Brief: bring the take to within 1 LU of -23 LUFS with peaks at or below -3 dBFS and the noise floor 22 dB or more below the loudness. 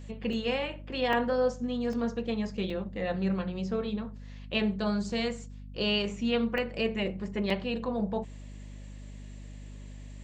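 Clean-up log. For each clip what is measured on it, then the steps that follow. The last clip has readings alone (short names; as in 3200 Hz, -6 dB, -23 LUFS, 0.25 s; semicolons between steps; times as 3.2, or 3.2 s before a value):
dropouts 6; longest dropout 2.6 ms; hum 50 Hz; harmonics up to 250 Hz; hum level -41 dBFS; loudness -31.0 LUFS; peak -15.0 dBFS; loudness target -23.0 LUFS
-> interpolate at 0.33/1.13/1.93/2.7/6.58/7.5, 2.6 ms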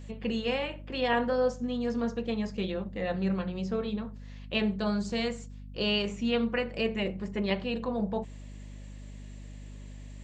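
dropouts 0; hum 50 Hz; harmonics up to 250 Hz; hum level -41 dBFS
-> notches 50/100/150/200/250 Hz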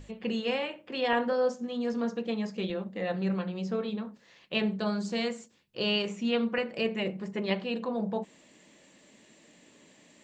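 hum none; loudness -31.5 LUFS; peak -14.5 dBFS; loudness target -23.0 LUFS
-> gain +8.5 dB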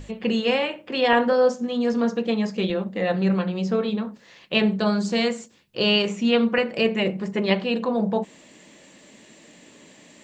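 loudness -23.0 LUFS; peak -6.0 dBFS; noise floor -52 dBFS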